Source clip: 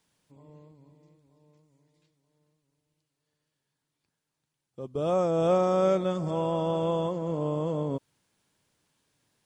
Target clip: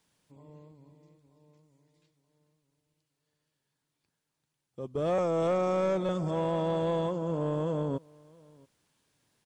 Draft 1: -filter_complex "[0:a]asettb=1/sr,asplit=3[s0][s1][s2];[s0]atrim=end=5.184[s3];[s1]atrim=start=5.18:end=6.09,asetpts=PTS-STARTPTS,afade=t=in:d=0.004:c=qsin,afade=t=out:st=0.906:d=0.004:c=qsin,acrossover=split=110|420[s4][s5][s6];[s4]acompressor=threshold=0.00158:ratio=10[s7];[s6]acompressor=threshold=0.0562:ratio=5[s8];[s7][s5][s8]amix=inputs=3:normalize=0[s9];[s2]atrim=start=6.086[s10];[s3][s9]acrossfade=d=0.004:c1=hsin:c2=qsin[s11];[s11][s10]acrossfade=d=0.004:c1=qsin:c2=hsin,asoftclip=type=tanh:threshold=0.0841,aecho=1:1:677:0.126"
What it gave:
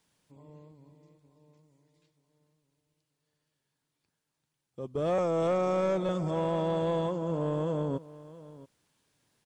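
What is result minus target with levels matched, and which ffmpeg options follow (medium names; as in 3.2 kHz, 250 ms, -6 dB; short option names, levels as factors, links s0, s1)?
echo-to-direct +8 dB
-filter_complex "[0:a]asettb=1/sr,asplit=3[s0][s1][s2];[s0]atrim=end=5.184[s3];[s1]atrim=start=5.18:end=6.09,asetpts=PTS-STARTPTS,afade=t=in:d=0.004:c=qsin,afade=t=out:st=0.906:d=0.004:c=qsin,acrossover=split=110|420[s4][s5][s6];[s4]acompressor=threshold=0.00158:ratio=10[s7];[s6]acompressor=threshold=0.0562:ratio=5[s8];[s7][s5][s8]amix=inputs=3:normalize=0[s9];[s2]atrim=start=6.086[s10];[s3][s9]acrossfade=d=0.004:c1=hsin:c2=qsin[s11];[s11][s10]acrossfade=d=0.004:c1=qsin:c2=hsin,asoftclip=type=tanh:threshold=0.0841,aecho=1:1:677:0.0501"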